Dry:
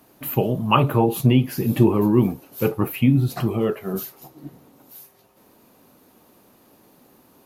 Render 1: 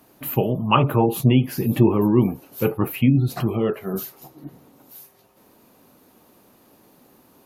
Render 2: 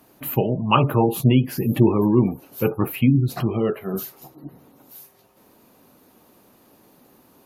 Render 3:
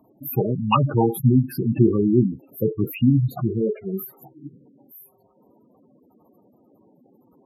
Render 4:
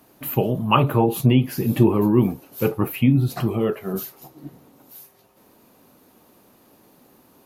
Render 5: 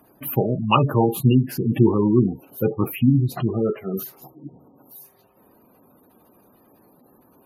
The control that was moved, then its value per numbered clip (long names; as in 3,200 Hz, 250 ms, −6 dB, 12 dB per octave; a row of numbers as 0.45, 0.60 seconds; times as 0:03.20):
gate on every frequency bin, under each frame's peak: −45, −35, −10, −60, −20 decibels